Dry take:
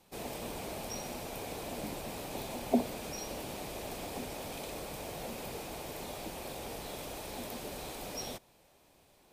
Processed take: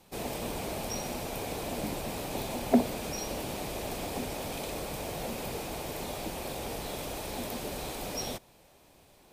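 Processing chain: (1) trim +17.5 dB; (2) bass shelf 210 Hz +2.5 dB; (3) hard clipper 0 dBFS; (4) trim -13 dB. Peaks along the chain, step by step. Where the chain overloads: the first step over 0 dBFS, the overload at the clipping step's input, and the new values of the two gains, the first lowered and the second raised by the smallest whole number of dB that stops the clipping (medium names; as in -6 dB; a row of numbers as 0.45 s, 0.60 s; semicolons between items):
+3.0 dBFS, +3.5 dBFS, 0.0 dBFS, -13.0 dBFS; step 1, 3.5 dB; step 1 +13.5 dB, step 4 -9 dB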